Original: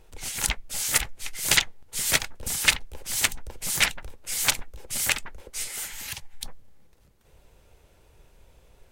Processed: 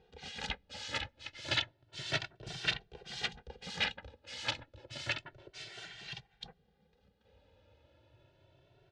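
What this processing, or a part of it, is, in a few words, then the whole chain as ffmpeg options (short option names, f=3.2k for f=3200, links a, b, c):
barber-pole flanger into a guitar amplifier: -filter_complex "[0:a]asplit=2[a][b];[b]adelay=2.1,afreqshift=0.3[c];[a][c]amix=inputs=2:normalize=1,asoftclip=type=tanh:threshold=-17.5dB,highpass=93,equalizer=f=120:t=q:w=4:g=4,equalizer=f=240:t=q:w=4:g=-5,equalizer=f=1.1k:t=q:w=4:g=-10,equalizer=f=2.2k:t=q:w=4:g=-7,lowpass=f=4.1k:w=0.5412,lowpass=f=4.1k:w=1.3066,volume=-1dB"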